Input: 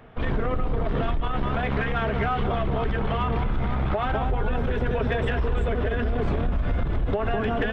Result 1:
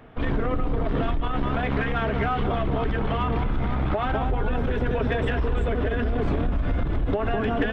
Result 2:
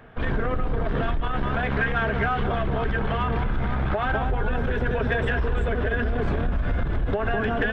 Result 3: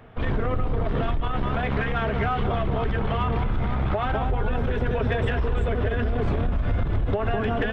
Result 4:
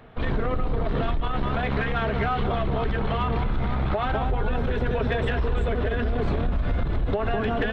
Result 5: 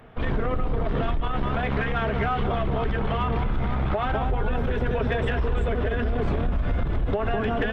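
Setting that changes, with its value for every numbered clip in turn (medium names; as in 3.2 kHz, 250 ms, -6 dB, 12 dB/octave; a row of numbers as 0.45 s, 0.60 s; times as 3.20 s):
peaking EQ, frequency: 290 Hz, 1.6 kHz, 100 Hz, 4.1 kHz, 14 kHz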